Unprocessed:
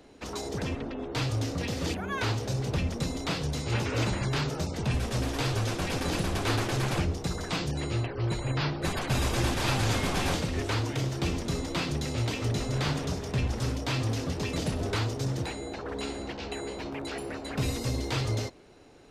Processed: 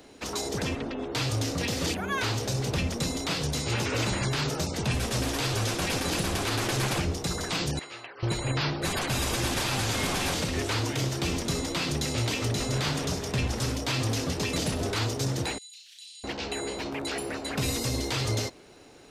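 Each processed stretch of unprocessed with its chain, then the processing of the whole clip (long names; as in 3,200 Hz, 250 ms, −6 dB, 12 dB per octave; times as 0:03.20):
0:07.79–0:08.23: high-pass filter 1,400 Hz + spectral tilt −4.5 dB per octave
0:15.58–0:16.24: Butterworth high-pass 2,900 Hz + downward compressor 5 to 1, threshold −54 dBFS + flutter between parallel walls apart 6 metres, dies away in 0.55 s
whole clip: spectral tilt +2 dB per octave; brickwall limiter −22.5 dBFS; low-shelf EQ 450 Hz +4.5 dB; level +2.5 dB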